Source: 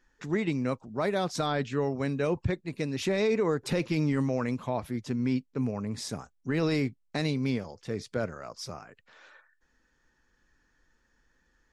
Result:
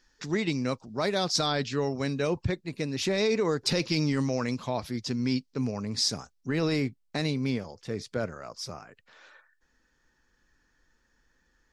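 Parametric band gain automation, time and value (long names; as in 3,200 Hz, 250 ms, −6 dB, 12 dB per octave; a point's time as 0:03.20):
parametric band 4,900 Hz 1 octave
0:01.95 +14 dB
0:02.84 +4.5 dB
0:03.57 +14.5 dB
0:06.09 +14.5 dB
0:06.68 +3 dB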